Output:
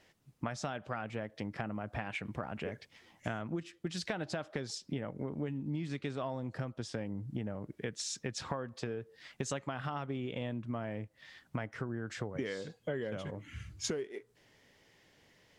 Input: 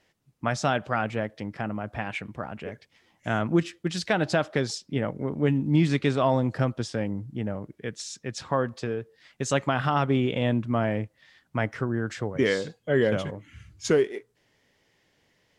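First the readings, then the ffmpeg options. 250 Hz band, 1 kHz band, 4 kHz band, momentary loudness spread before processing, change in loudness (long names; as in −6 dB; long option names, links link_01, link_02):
−12.0 dB, −13.0 dB, −8.5 dB, 12 LU, −12.5 dB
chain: -af "acompressor=threshold=-36dB:ratio=12,volume=2dB"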